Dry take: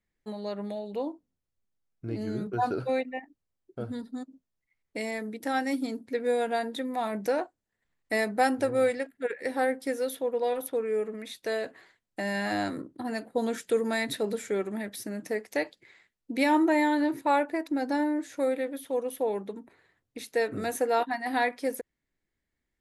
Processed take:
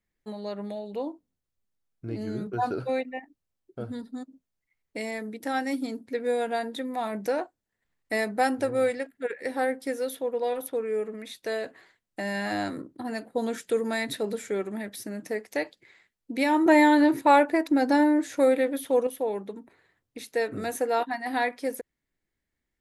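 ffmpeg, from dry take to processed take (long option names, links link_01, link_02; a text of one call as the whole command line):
ffmpeg -i in.wav -filter_complex "[0:a]asettb=1/sr,asplit=3[link_01][link_02][link_03];[link_01]atrim=end=16.664[link_04];[link_02]atrim=start=16.66:end=19.07,asetpts=PTS-STARTPTS,afade=type=in:duration=0.004:curve=qsin,afade=type=out:start_time=2.406:duration=0.004:curve=qsin,acontrast=67[link_05];[link_03]atrim=start=19.066[link_06];[link_04][link_05]acrossfade=duration=0.004:curve1=hsin:curve2=qsin[link_07];[link_07][link_06]acrossfade=duration=0.004:curve1=qsin:curve2=hsin" out.wav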